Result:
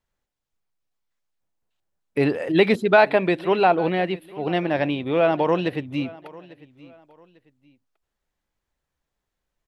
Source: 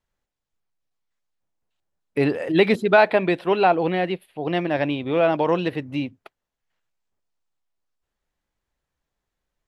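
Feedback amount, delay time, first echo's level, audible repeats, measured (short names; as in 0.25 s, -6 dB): 30%, 0.847 s, -21.0 dB, 2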